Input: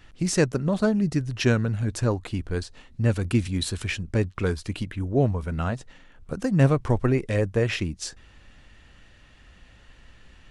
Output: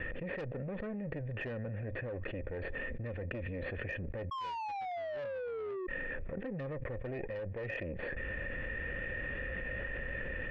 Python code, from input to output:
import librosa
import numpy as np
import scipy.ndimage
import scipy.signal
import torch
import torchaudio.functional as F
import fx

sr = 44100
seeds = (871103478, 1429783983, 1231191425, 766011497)

y = fx.lower_of_two(x, sr, delay_ms=0.68)
y = fx.formant_cascade(y, sr, vowel='e')
y = fx.spec_paint(y, sr, seeds[0], shape='fall', start_s=4.31, length_s=1.56, low_hz=360.0, high_hz=1100.0, level_db=-27.0)
y = 10.0 ** (-31.0 / 20.0) * np.tanh(y / 10.0 ** (-31.0 / 20.0))
y = fx.env_flatten(y, sr, amount_pct=100)
y = y * 10.0 ** (-6.5 / 20.0)